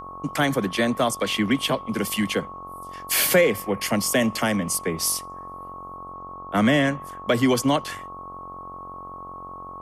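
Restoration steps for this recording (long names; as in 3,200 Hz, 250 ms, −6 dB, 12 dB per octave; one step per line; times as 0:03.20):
hum removal 45.3 Hz, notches 29
notch filter 1,100 Hz, Q 30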